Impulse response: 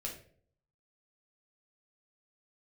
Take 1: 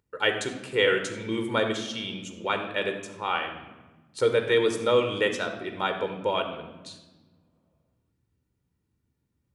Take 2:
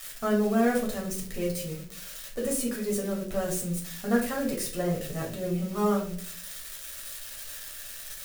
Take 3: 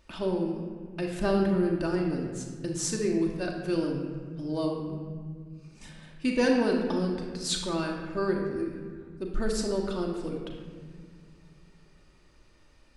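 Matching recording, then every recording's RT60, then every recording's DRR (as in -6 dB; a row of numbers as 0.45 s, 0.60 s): 2; 1.3 s, 0.55 s, 1.8 s; 5.5 dB, -2.5 dB, -0.5 dB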